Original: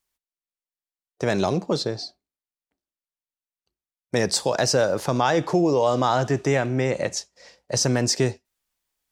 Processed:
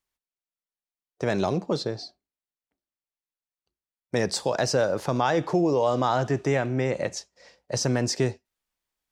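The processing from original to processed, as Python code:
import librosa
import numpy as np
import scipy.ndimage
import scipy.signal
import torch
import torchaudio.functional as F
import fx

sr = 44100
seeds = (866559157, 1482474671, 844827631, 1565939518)

y = fx.high_shelf(x, sr, hz=4700.0, db=-6.0)
y = F.gain(torch.from_numpy(y), -2.5).numpy()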